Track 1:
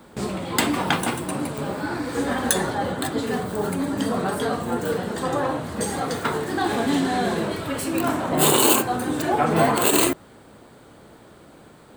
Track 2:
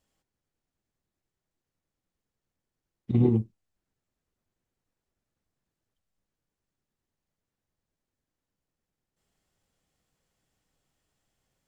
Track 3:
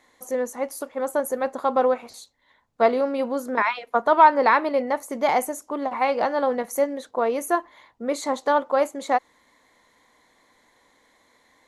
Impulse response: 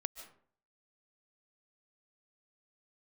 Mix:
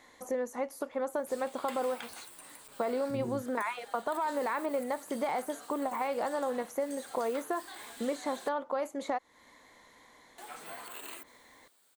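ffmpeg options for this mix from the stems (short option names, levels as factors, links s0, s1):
-filter_complex "[0:a]aderivative,adelay=1100,volume=0.398,asplit=3[s0][s1][s2];[s0]atrim=end=8.49,asetpts=PTS-STARTPTS,afade=t=out:st=8.486:d=0.004:c=hsin[s3];[s1]atrim=start=8.49:end=10.38,asetpts=PTS-STARTPTS,volume=0[s4];[s2]atrim=start=10.38,asetpts=PTS-STARTPTS,afade=t=in:d=0.004:c=hsin[s5];[s3][s4][s5]concat=n=3:v=0:a=1[s6];[1:a]volume=0.398,asplit=2[s7][s8];[2:a]alimiter=limit=0.2:level=0:latency=1:release=32,volume=1.26[s9];[s8]apad=whole_len=575979[s10];[s6][s10]sidechaincompress=threshold=0.0141:ratio=10:attack=28:release=840[s11];[s7][s9]amix=inputs=2:normalize=0,acompressor=threshold=0.0224:ratio=3,volume=1[s12];[s11][s12]amix=inputs=2:normalize=0,acrossover=split=2600[s13][s14];[s14]acompressor=threshold=0.00501:ratio=4:attack=1:release=60[s15];[s13][s15]amix=inputs=2:normalize=0"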